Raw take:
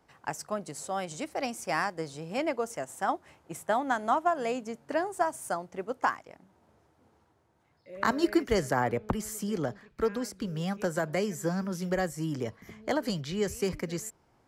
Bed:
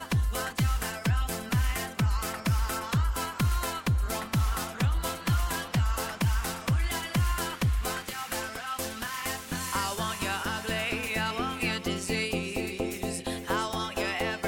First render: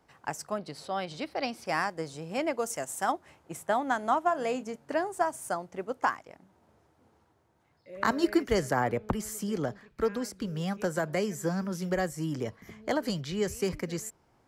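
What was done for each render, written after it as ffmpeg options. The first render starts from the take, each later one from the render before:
-filter_complex "[0:a]asettb=1/sr,asplit=3[s0][s1][s2];[s0]atrim=end=0.584[s3];[s1]atrim=start=0.58:end=1.66,asetpts=PTS-STARTPTS,afade=t=in:d=0.004:c=qsin,afade=t=out:st=1.076:d=0.004:c=qsin,highshelf=f=5600:t=q:w=3:g=-8[s4];[s2]atrim=start=1.656[s5];[s3][s4]acrossfade=d=0.004:c1=hsin:c2=qsin[s6];[s6][s5]acrossfade=d=0.004:c1=qsin:c2=hsin,asettb=1/sr,asplit=3[s7][s8][s9];[s7]atrim=end=2.584[s10];[s8]atrim=start=2.58:end=3.12,asetpts=PTS-STARTPTS,afade=t=in:d=0.004:c=qsin,afade=t=out:st=0.536:d=0.004:c=qsin,highshelf=f=4000:g=9.5[s11];[s9]atrim=start=3.116[s12];[s10][s11]acrossfade=d=0.004:c1=hsin:c2=qsin[s13];[s13][s12]acrossfade=d=0.004:c1=qsin:c2=hsin,asettb=1/sr,asplit=3[s14][s15][s16];[s14]atrim=end=4.214[s17];[s15]atrim=start=4.21:end=4.76,asetpts=PTS-STARTPTS,afade=t=in:d=0.004:c=qsin,afade=t=out:st=0.546:d=0.004:c=qsin,asplit=2[s18][s19];[s19]adelay=28,volume=0.237[s20];[s18][s20]amix=inputs=2:normalize=0,atrim=end_sample=24255[s21];[s16]atrim=start=4.756[s22];[s17][s21]acrossfade=d=0.004:c1=hsin:c2=qsin[s23];[s23][s22]acrossfade=d=0.004:c1=qsin:c2=hsin"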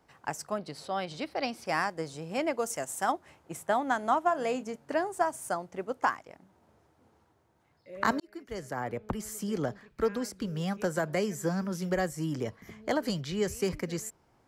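-filter_complex "[0:a]asplit=2[s0][s1];[s0]atrim=end=8.2,asetpts=PTS-STARTPTS,afade=t=out:st=8.196:d=0.004:c=hsin[s2];[s1]atrim=start=8.2,asetpts=PTS-STARTPTS,afade=t=in:d=1.4[s3];[s2][s3]concat=n=2:v=0:a=1"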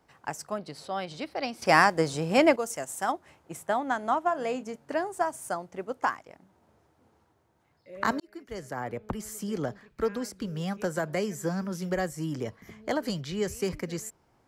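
-filter_complex "[0:a]asettb=1/sr,asplit=3[s0][s1][s2];[s0]atrim=end=3.734[s3];[s1]atrim=start=3.73:end=4.65,asetpts=PTS-STARTPTS,afade=t=in:d=0.004:c=qsin,afade=t=out:st=0.916:d=0.004:c=qsin,highshelf=f=6600:g=-4.5[s4];[s2]atrim=start=4.646[s5];[s3][s4]acrossfade=d=0.004:c1=hsin:c2=qsin[s6];[s6][s5]acrossfade=d=0.004:c1=qsin:c2=hsin,asplit=3[s7][s8][s9];[s7]atrim=end=1.622[s10];[s8]atrim=start=1.618:end=2.562,asetpts=PTS-STARTPTS,volume=3.16[s11];[s9]atrim=start=2.558[s12];[s10][s11]acrossfade=d=0.004:c1=hsin:c2=hsin[s13];[s13][s12]acrossfade=d=0.004:c1=hsin:c2=hsin"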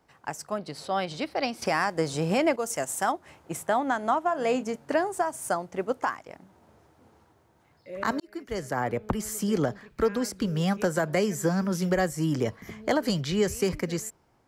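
-af "dynaudnorm=f=160:g=9:m=2.11,alimiter=limit=0.2:level=0:latency=1:release=278"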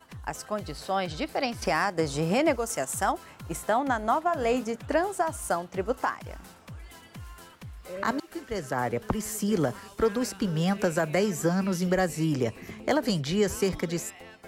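-filter_complex "[1:a]volume=0.141[s0];[0:a][s0]amix=inputs=2:normalize=0"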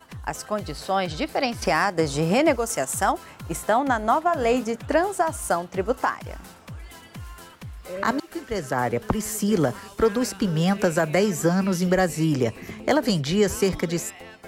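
-af "volume=1.68"

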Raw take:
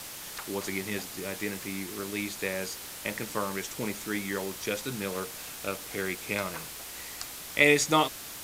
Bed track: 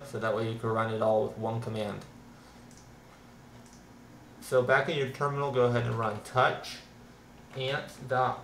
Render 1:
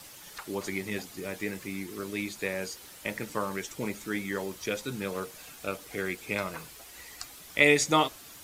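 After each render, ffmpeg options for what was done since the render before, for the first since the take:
-af "afftdn=nr=9:nf=-42"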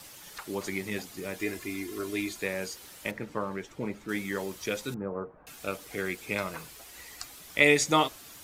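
-filter_complex "[0:a]asettb=1/sr,asplit=3[s0][s1][s2];[s0]atrim=end=1.394[s3];[s1]atrim=start=1.39:end=2.39,asetpts=PTS-STARTPTS,afade=t=in:d=0.004:c=qsin,afade=t=out:st=0.996:d=0.004:c=qsin,aecho=1:1:2.9:0.65,atrim=end_sample=44100[s4];[s2]atrim=start=2.386[s5];[s3][s4]acrossfade=d=0.004:c1=hsin:c2=qsin[s6];[s6][s5]acrossfade=d=0.004:c1=qsin:c2=hsin,asettb=1/sr,asplit=3[s7][s8][s9];[s7]atrim=end=3.114[s10];[s8]atrim=start=3.11:end=4.09,asetpts=PTS-STARTPTS,afade=t=in:d=0.004:c=qsin,afade=t=out:st=0.976:d=0.004:c=qsin,lowpass=f=1400:p=1[s11];[s9]atrim=start=4.086[s12];[s10][s11]acrossfade=d=0.004:c1=hsin:c2=qsin[s13];[s13][s12]acrossfade=d=0.004:c1=qsin:c2=hsin,asettb=1/sr,asplit=3[s14][s15][s16];[s14]atrim=end=4.944[s17];[s15]atrim=start=4.94:end=5.47,asetpts=PTS-STARTPTS,afade=t=in:d=0.004:c=qsin,afade=t=out:st=0.526:d=0.004:c=qsin,lowpass=f=1200:w=0.5412,lowpass=f=1200:w=1.3066[s18];[s16]atrim=start=5.466[s19];[s17][s18]acrossfade=d=0.004:c1=hsin:c2=qsin[s20];[s20][s19]acrossfade=d=0.004:c1=qsin:c2=hsin"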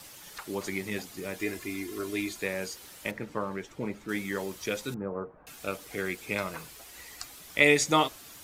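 -af anull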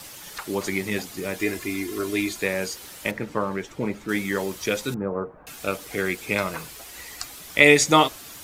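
-af "volume=2.24,alimiter=limit=0.891:level=0:latency=1"

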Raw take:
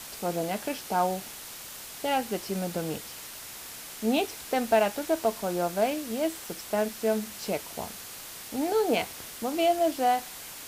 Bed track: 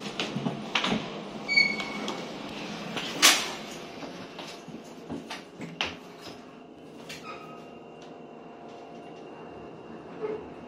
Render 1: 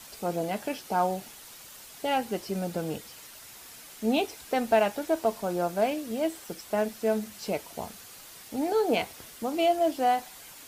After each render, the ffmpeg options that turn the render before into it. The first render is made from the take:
-af "afftdn=nr=7:nf=-43"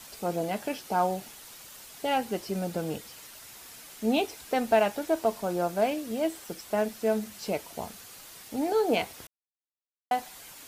-filter_complex "[0:a]asplit=3[s0][s1][s2];[s0]atrim=end=9.27,asetpts=PTS-STARTPTS,afade=t=out:st=9.266:d=0.004:c=hsin[s3];[s1]atrim=start=9.27:end=10.11,asetpts=PTS-STARTPTS,volume=0[s4];[s2]atrim=start=10.11,asetpts=PTS-STARTPTS,afade=t=in:d=0.004:c=hsin[s5];[s3][s4][s5]concat=n=3:v=0:a=1"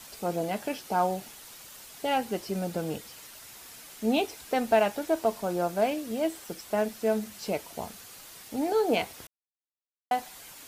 -af anull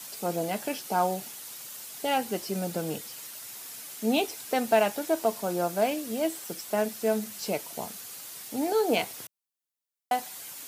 -af "highpass=f=110:w=0.5412,highpass=f=110:w=1.3066,highshelf=f=5200:g=8"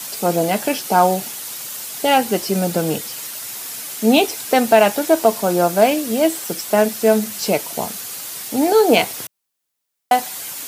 -af "volume=3.98,alimiter=limit=0.891:level=0:latency=1"

